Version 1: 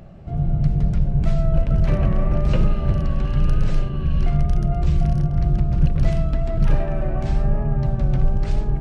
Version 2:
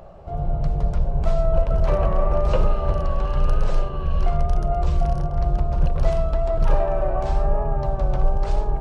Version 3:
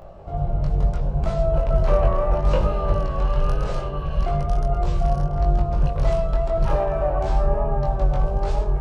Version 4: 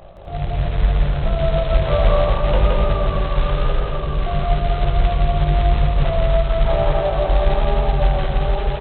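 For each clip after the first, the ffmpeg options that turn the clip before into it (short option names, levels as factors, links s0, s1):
-af "equalizer=f=125:t=o:w=1:g=-7,equalizer=f=250:t=o:w=1:g=-10,equalizer=f=500:t=o:w=1:g=7,equalizer=f=1000:t=o:w=1:g=9,equalizer=f=2000:t=o:w=1:g=-5"
-af "flanger=delay=20:depth=2.4:speed=0.72,volume=1.58"
-af "aresample=8000,acrusher=bits=4:mode=log:mix=0:aa=0.000001,aresample=44100,aecho=1:1:169.1|250.7:0.891|0.501"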